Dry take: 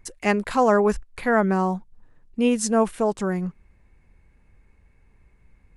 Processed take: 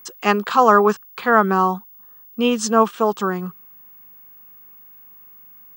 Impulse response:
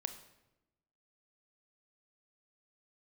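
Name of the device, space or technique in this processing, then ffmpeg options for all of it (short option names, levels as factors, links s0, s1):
old television with a line whistle: -af "highpass=f=180:w=0.5412,highpass=f=180:w=1.3066,equalizer=f=180:t=q:w=4:g=-3,equalizer=f=280:t=q:w=4:g=-9,equalizer=f=580:t=q:w=4:g=-7,equalizer=f=1200:t=q:w=4:g=10,equalizer=f=2100:t=q:w=4:g=-8,equalizer=f=3200:t=q:w=4:g=6,lowpass=f=6900:w=0.5412,lowpass=f=6900:w=1.3066,aeval=exprs='val(0)+0.00398*sin(2*PI*15625*n/s)':c=same,volume=1.88"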